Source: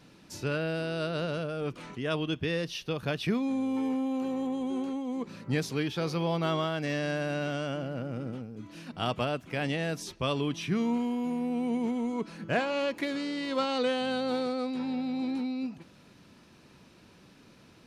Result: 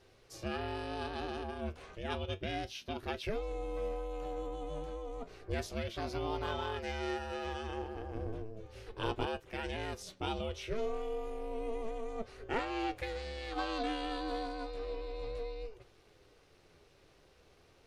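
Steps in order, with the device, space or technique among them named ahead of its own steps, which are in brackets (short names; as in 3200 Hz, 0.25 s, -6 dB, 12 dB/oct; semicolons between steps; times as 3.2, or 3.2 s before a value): alien voice (ring modulator 220 Hz; flange 0.32 Hz, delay 7.5 ms, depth 6.2 ms, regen +65%); 8.15–9.26 low shelf 490 Hz +5.5 dB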